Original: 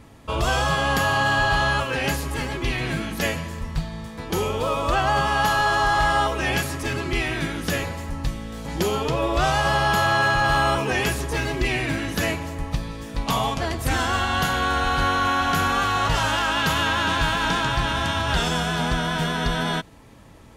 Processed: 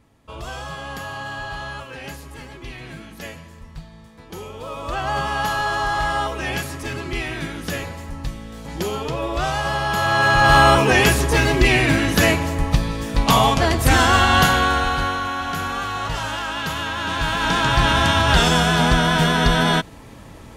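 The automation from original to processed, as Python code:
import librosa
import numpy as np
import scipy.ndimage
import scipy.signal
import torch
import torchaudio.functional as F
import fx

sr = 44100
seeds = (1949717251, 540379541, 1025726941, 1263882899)

y = fx.gain(x, sr, db=fx.line((4.52, -10.5), (5.15, -2.0), (9.89, -2.0), (10.56, 8.0), (14.41, 8.0), (15.28, -4.0), (16.94, -4.0), (17.86, 7.0)))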